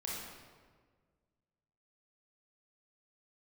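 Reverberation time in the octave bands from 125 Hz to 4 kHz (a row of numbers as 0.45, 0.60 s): 2.1, 1.9, 1.8, 1.5, 1.3, 1.0 s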